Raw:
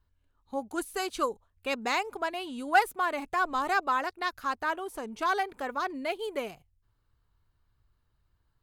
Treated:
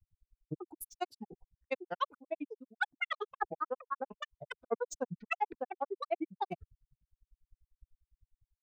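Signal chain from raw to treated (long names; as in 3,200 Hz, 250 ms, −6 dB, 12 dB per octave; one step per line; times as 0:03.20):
expanding power law on the bin magnitudes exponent 1.8
reversed playback
downward compressor 10 to 1, threshold −39 dBFS, peak gain reduction 22 dB
reversed playback
granular cloud 50 ms, grains 10 per second, spray 29 ms, pitch spread up and down by 12 semitones
multiband upward and downward expander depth 70%
level +10 dB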